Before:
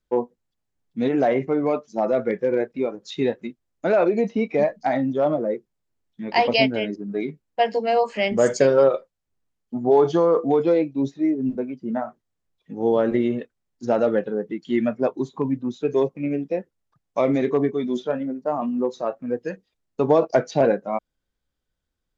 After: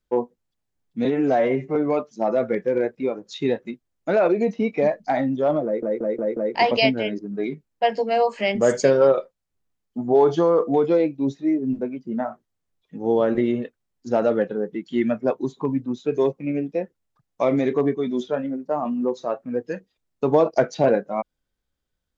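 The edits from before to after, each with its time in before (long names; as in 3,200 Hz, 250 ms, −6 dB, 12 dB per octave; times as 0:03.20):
0:01.05–0:01.52: time-stretch 1.5×
0:05.41: stutter in place 0.18 s, 5 plays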